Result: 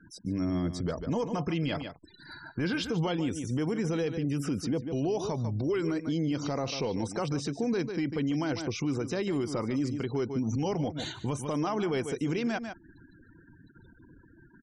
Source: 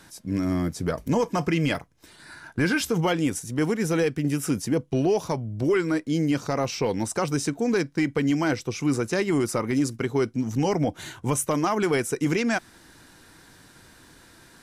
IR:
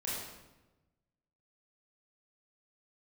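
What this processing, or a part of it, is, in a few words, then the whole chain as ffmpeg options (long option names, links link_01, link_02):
over-bright horn tweeter: -filter_complex "[0:a]acrossover=split=3600[link_01][link_02];[link_02]acompressor=threshold=-42dB:ratio=4:attack=1:release=60[link_03];[link_01][link_03]amix=inputs=2:normalize=0,afftfilt=real='re*gte(hypot(re,im),0.00708)':imag='im*gte(hypot(re,im),0.00708)':win_size=1024:overlap=0.75,aemphasis=mode=reproduction:type=75kf,highshelf=frequency=2800:width_type=q:width=1.5:gain=9.5,aecho=1:1:147:0.188,alimiter=limit=-24dB:level=0:latency=1:release=80,volume=1.5dB"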